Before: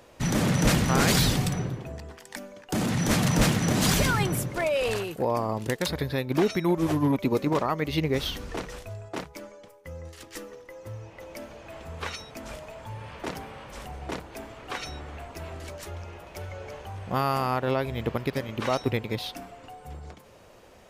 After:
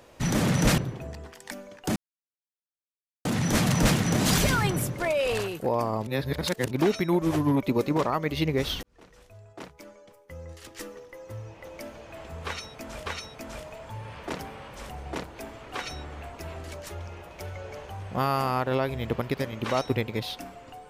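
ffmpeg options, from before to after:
-filter_complex "[0:a]asplit=7[s0][s1][s2][s3][s4][s5][s6];[s0]atrim=end=0.782[s7];[s1]atrim=start=1.628:end=2.81,asetpts=PTS-STARTPTS,afade=t=out:st=1.178:d=0.004:c=hsin,apad=pad_dur=1.29[s8];[s2]atrim=start=2.81:end=5.632,asetpts=PTS-STARTPTS,afade=t=in:d=0.004:c=hsin[s9];[s3]atrim=start=5.628:end=6.272,asetpts=PTS-STARTPTS,areverse[s10];[s4]atrim=start=6.268:end=8.39,asetpts=PTS-STARTPTS,afade=t=out:st=2.118:d=0.004:c=hsin[s11];[s5]atrim=start=8.39:end=12.622,asetpts=PTS-STARTPTS,afade=t=in:d=1.9[s12];[s6]atrim=start=12.018[s13];[s8][s9]concat=n=2:v=0:a=1[s14];[s7][s14]acrossfade=d=0.004:c1=hsin:c2=hsin[s15];[s15][s10]acrossfade=d=0.004:c1=hsin:c2=hsin[s16];[s11][s12]concat=n=2:v=0:a=1[s17];[s16][s17]acrossfade=d=0.004:c1=hsin:c2=hsin[s18];[s18][s13]acrossfade=d=0.004:c1=hsin:c2=hsin"

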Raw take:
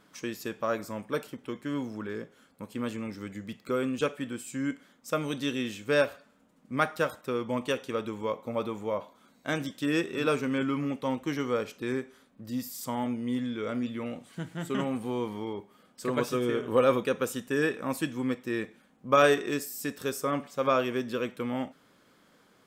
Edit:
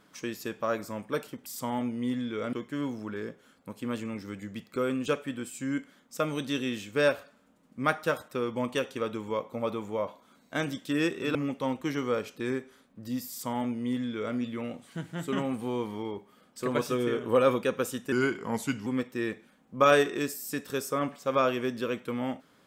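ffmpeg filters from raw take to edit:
-filter_complex "[0:a]asplit=6[s0][s1][s2][s3][s4][s5];[s0]atrim=end=1.462[s6];[s1]atrim=start=12.708:end=13.782[s7];[s2]atrim=start=1.458:end=10.282[s8];[s3]atrim=start=10.768:end=17.544[s9];[s4]atrim=start=17.54:end=18.18,asetpts=PTS-STARTPTS,asetrate=37926,aresample=44100[s10];[s5]atrim=start=18.176[s11];[s6][s7]acrossfade=d=0.004:c1=hsin:c2=hsin[s12];[s12][s8]acrossfade=d=0.004:c1=hsin:c2=hsin[s13];[s13][s9]acrossfade=d=0.004:c1=hsin:c2=hsin[s14];[s14][s10]acrossfade=d=0.004:c1=hsin:c2=hsin[s15];[s15][s11]acrossfade=d=0.004:c1=hsin:c2=hsin"

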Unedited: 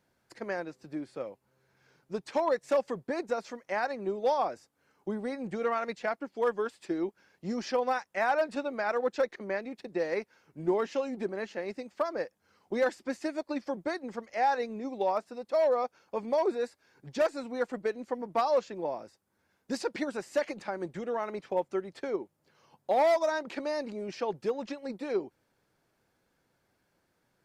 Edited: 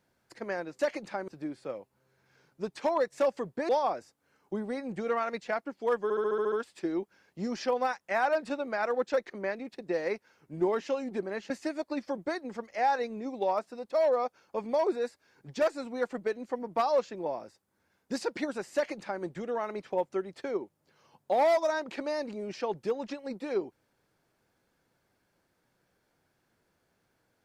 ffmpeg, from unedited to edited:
-filter_complex "[0:a]asplit=12[s0][s1][s2][s3][s4][s5][s6][s7][s8][s9][s10][s11];[s0]atrim=end=0.792[s12];[s1]atrim=start=20.328:end=20.822[s13];[s2]atrim=start=0.788:end=3.202[s14];[s3]atrim=start=4.238:end=6.652[s15];[s4]atrim=start=6.578:end=6.652[s16];[s5]atrim=start=6.578:end=6.652[s17];[s6]atrim=start=6.578:end=6.652[s18];[s7]atrim=start=6.578:end=6.652[s19];[s8]atrim=start=6.578:end=6.652[s20];[s9]atrim=start=6.578:end=6.652[s21];[s10]atrim=start=6.578:end=11.562[s22];[s11]atrim=start=13.088[s23];[s12][s13]acrossfade=d=0.004:c1=hsin:c2=hsin[s24];[s24][s14]acrossfade=d=0.004:c1=hsin:c2=hsin[s25];[s25][s15]acrossfade=d=0.004:c1=hsin:c2=hsin[s26];[s26][s16]acrossfade=d=0.004:c1=hsin:c2=hsin[s27];[s27][s17]acrossfade=d=0.004:c1=hsin:c2=hsin[s28];[s28][s18]acrossfade=d=0.004:c1=hsin:c2=hsin[s29];[s29][s19]acrossfade=d=0.004:c1=hsin:c2=hsin[s30];[s30][s20]acrossfade=d=0.004:c1=hsin:c2=hsin[s31];[s31][s21]acrossfade=d=0.004:c1=hsin:c2=hsin[s32];[s32][s22]acrossfade=d=0.004:c1=hsin:c2=hsin[s33];[s33][s23]acrossfade=d=0.004:c1=hsin:c2=hsin"

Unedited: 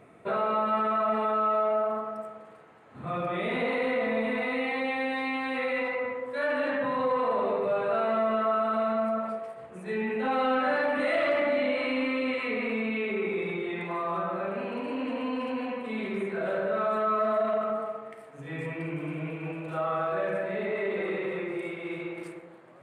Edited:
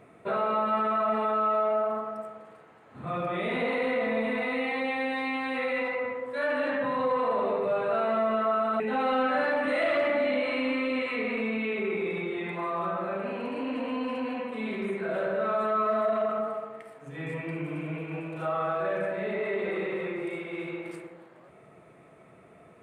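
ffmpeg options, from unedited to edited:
-filter_complex "[0:a]asplit=2[s0][s1];[s0]atrim=end=8.802[s2];[s1]atrim=start=10.118[s3];[s2][s3]acrossfade=d=0.004:c1=hsin:c2=hsin"

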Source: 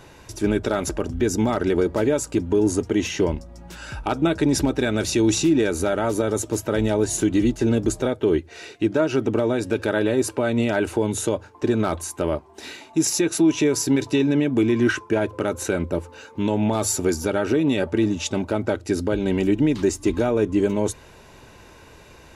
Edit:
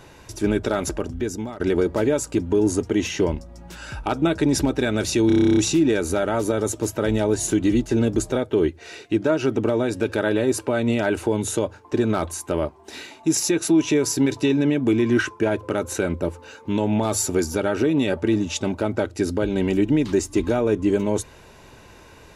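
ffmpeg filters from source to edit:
-filter_complex "[0:a]asplit=12[s0][s1][s2][s3][s4][s5][s6][s7][s8][s9][s10][s11];[s0]atrim=end=1.6,asetpts=PTS-STARTPTS,afade=t=out:st=0.9:d=0.7:silence=0.149624[s12];[s1]atrim=start=1.6:end=5.302,asetpts=PTS-STARTPTS,afade=t=in:d=0.004:c=hsin:silence=0.149624[s13];[s2]atrim=start=5.268:end=5.302[s14];[s3]atrim=start=5.268:end=5.302[s15];[s4]atrim=start=5.268:end=5.302[s16];[s5]atrim=start=5.268:end=5.302[s17];[s6]atrim=start=5.268:end=5.302[s18];[s7]atrim=start=5.268:end=5.302[s19];[s8]atrim=start=5.268:end=5.302[s20];[s9]atrim=start=5.268:end=5.302[s21];[s10]atrim=start=5.268:end=5.302[s22];[s11]atrim=start=5.268[s23];[s12][s13]concat=n=2:v=0:a=1[s24];[s24][s14]acrossfade=d=0.004:c1=hsin:c2=hsin[s25];[s25][s15]acrossfade=d=0.004:c1=hsin:c2=hsin[s26];[s26][s16]acrossfade=d=0.004:c1=hsin:c2=hsin[s27];[s27][s17]acrossfade=d=0.004:c1=hsin:c2=hsin[s28];[s28][s18]acrossfade=d=0.004:c1=hsin:c2=hsin[s29];[s29][s19]acrossfade=d=0.004:c1=hsin:c2=hsin[s30];[s30][s20]acrossfade=d=0.004:c1=hsin:c2=hsin[s31];[s31][s21]acrossfade=d=0.004:c1=hsin:c2=hsin[s32];[s32][s22]acrossfade=d=0.004:c1=hsin:c2=hsin[s33];[s33][s23]acrossfade=d=0.004:c1=hsin:c2=hsin"

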